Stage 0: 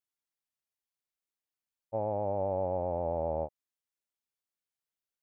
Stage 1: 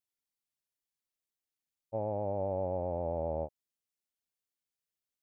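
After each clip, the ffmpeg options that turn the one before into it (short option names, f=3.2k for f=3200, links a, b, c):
-af "equalizer=f=1.2k:t=o:w=1.8:g=-5.5"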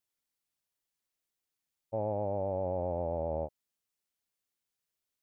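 -af "alimiter=level_in=3dB:limit=-24dB:level=0:latency=1:release=69,volume=-3dB,volume=3.5dB"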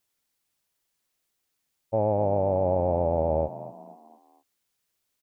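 -filter_complex "[0:a]asplit=5[a][b][c][d][e];[b]adelay=235,afreqshift=50,volume=-14.5dB[f];[c]adelay=470,afreqshift=100,volume=-21.8dB[g];[d]adelay=705,afreqshift=150,volume=-29.2dB[h];[e]adelay=940,afreqshift=200,volume=-36.5dB[i];[a][f][g][h][i]amix=inputs=5:normalize=0,volume=9dB"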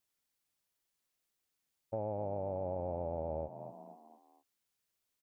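-af "acompressor=threshold=-33dB:ratio=2,volume=-6.5dB"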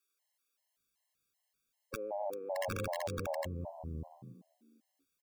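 -filter_complex "[0:a]acrossover=split=320[a][b];[a]adelay=620[c];[c][b]amix=inputs=2:normalize=0,aeval=exprs='(mod(28.2*val(0)+1,2)-1)/28.2':c=same,afftfilt=real='re*gt(sin(2*PI*2.6*pts/sr)*(1-2*mod(floor(b*sr/1024/550),2)),0)':imag='im*gt(sin(2*PI*2.6*pts/sr)*(1-2*mod(floor(b*sr/1024/550),2)),0)':win_size=1024:overlap=0.75,volume=4.5dB"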